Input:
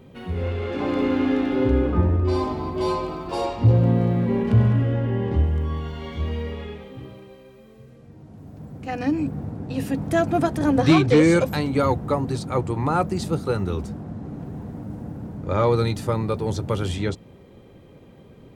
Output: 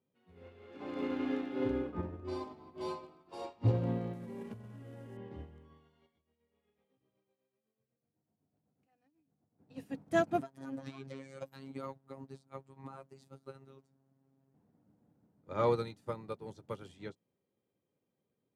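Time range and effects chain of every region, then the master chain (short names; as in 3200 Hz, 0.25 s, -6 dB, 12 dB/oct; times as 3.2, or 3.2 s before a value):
4.13–5.17 CVSD 64 kbps + compressor 16:1, threshold -19 dBFS
6.06–9.59 bell 710 Hz +4 dB 0.21 oct + compressor 10:1, threshold -35 dBFS + tremolo 8 Hz, depth 56%
10.41–14.54 compressor 10:1, threshold -18 dBFS + robotiser 135 Hz
whole clip: Bessel high-pass 160 Hz, order 2; upward expander 2.5:1, over -36 dBFS; gain -6 dB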